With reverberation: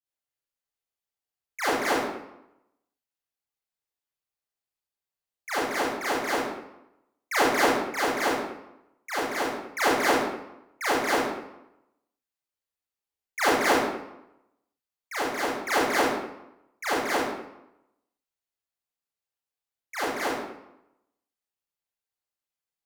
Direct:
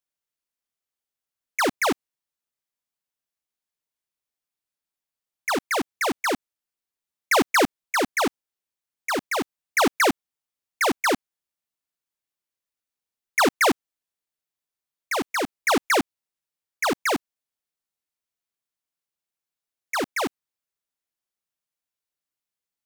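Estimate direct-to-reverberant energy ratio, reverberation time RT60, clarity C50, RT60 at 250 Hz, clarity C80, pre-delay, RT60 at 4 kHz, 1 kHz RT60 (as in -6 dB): -11.5 dB, 0.85 s, -2.5 dB, 0.85 s, 2.0 dB, 29 ms, 0.60 s, 0.85 s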